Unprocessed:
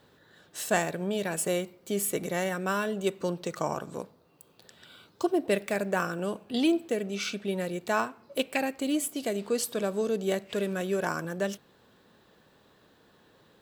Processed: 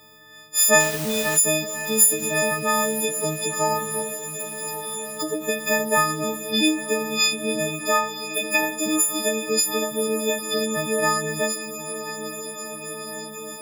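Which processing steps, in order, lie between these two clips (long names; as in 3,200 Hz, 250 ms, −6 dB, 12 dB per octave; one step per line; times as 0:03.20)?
every partial snapped to a pitch grid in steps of 6 semitones
0:00.80–0:01.37: bit-depth reduction 6 bits, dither triangular
on a send: feedback delay with all-pass diffusion 1,007 ms, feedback 77%, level −12 dB
on the sum: every ending faded ahead of time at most 110 dB per second
level +4 dB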